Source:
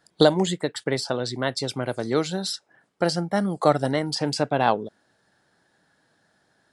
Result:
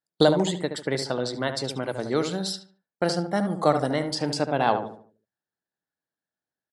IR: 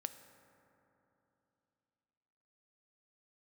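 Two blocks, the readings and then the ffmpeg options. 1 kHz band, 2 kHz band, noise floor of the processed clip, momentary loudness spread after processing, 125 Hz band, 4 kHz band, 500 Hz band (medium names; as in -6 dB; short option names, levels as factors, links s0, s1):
-1.0 dB, -1.5 dB, under -85 dBFS, 8 LU, -2.0 dB, -2.0 dB, -1.0 dB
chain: -filter_complex "[0:a]bandreject=f=60:t=h:w=6,bandreject=f=120:t=h:w=6,agate=range=0.0447:threshold=0.00794:ratio=16:detection=peak,asplit=2[s0][s1];[s1]adelay=73,lowpass=f=1700:p=1,volume=0.447,asplit=2[s2][s3];[s3]adelay=73,lowpass=f=1700:p=1,volume=0.4,asplit=2[s4][s5];[s5]adelay=73,lowpass=f=1700:p=1,volume=0.4,asplit=2[s6][s7];[s7]adelay=73,lowpass=f=1700:p=1,volume=0.4,asplit=2[s8][s9];[s9]adelay=73,lowpass=f=1700:p=1,volume=0.4[s10];[s0][s2][s4][s6][s8][s10]amix=inputs=6:normalize=0,volume=0.794"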